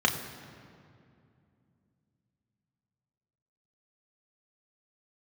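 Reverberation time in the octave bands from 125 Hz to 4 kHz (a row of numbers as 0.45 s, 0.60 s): 3.8 s, 3.7 s, 2.6 s, 2.3 s, 2.0 s, 1.5 s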